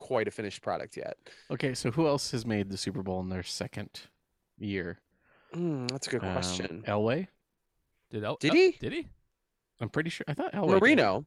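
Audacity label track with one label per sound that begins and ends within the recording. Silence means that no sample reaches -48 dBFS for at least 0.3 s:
4.580000	4.950000	sound
5.520000	7.260000	sound
8.110000	9.110000	sound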